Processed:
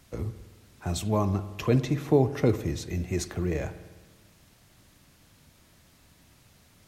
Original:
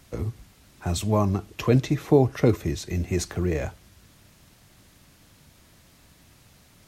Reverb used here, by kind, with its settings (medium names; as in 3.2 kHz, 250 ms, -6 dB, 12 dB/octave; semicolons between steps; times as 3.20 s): spring tank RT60 1.3 s, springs 51 ms, chirp 50 ms, DRR 12.5 dB; trim -3.5 dB